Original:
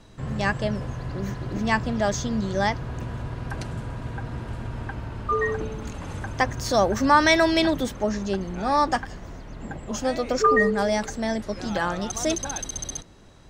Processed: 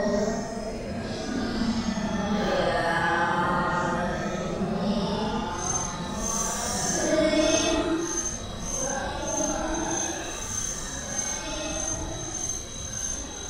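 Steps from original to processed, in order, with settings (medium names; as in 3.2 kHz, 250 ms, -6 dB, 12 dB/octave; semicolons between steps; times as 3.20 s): saturation -7 dBFS, distortion -23 dB; two-band feedback delay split 1.2 kHz, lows 235 ms, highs 431 ms, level -9 dB; Paulstretch 9.3×, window 0.05 s, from 11.49 s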